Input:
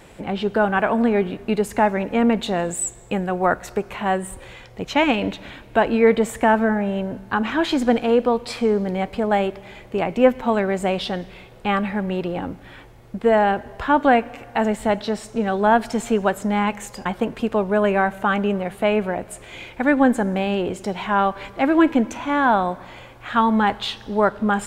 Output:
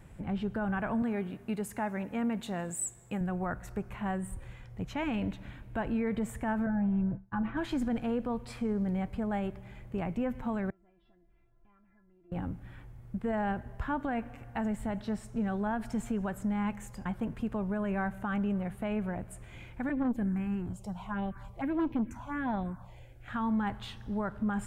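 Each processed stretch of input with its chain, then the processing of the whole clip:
1.02–3.21 s: high-pass 260 Hz 6 dB/octave + treble shelf 5 kHz +6 dB
6.66–7.57 s: tape spacing loss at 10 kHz 36 dB + expander -29 dBFS + comb 6 ms, depth 89%
10.70–12.32 s: low-pass 1.7 kHz + compression 2:1, threshold -42 dBFS + feedback comb 340 Hz, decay 0.19 s, mix 100%
19.89–23.28 s: touch-sensitive phaser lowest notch 160 Hz, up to 1.8 kHz, full sweep at -12.5 dBFS + transformer saturation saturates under 560 Hz
whole clip: FFT filter 130 Hz 0 dB, 440 Hz -16 dB, 810 Hz -14 dB, 1.6 kHz -12 dB, 4.1 kHz -20 dB, 9.9 kHz -12 dB; peak limiter -24 dBFS

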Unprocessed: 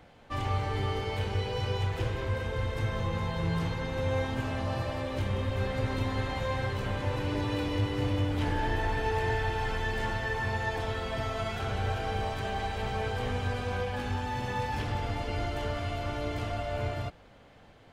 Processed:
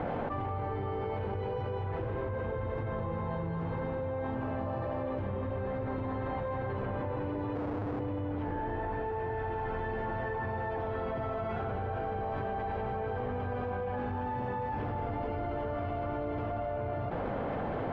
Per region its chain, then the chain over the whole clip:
7.55–8.00 s: one-bit delta coder 16 kbps, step -38 dBFS + boxcar filter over 21 samples + Schmitt trigger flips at -43.5 dBFS
whole clip: low-pass 1.1 kHz 12 dB/octave; bass shelf 110 Hz -10.5 dB; level flattener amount 100%; trim -4.5 dB

